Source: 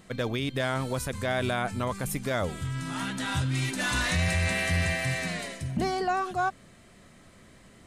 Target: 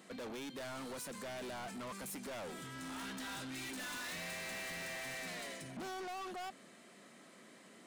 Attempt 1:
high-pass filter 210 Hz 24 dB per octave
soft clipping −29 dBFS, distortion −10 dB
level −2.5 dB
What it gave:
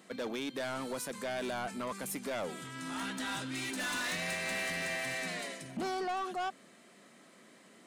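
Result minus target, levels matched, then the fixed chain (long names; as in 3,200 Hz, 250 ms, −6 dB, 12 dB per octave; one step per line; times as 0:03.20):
soft clipping: distortion −6 dB
high-pass filter 210 Hz 24 dB per octave
soft clipping −40 dBFS, distortion −4 dB
level −2.5 dB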